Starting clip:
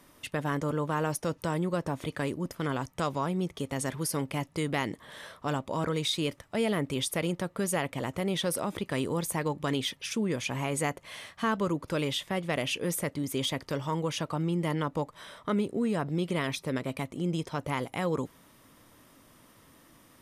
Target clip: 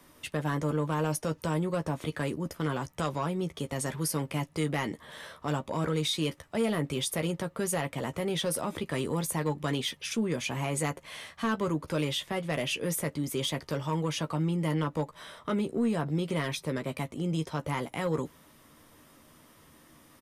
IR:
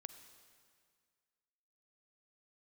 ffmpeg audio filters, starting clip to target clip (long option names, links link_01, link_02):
-filter_complex "[0:a]asplit=2[link_01][link_02];[link_02]adelay=13,volume=-8dB[link_03];[link_01][link_03]amix=inputs=2:normalize=0,acrossover=split=200|6100[link_04][link_05][link_06];[link_05]asoftclip=type=tanh:threshold=-22dB[link_07];[link_04][link_07][link_06]amix=inputs=3:normalize=0"